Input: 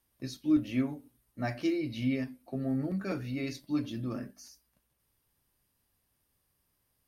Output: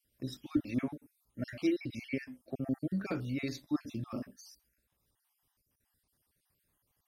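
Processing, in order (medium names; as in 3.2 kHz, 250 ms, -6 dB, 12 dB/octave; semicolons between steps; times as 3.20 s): random holes in the spectrogram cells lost 45%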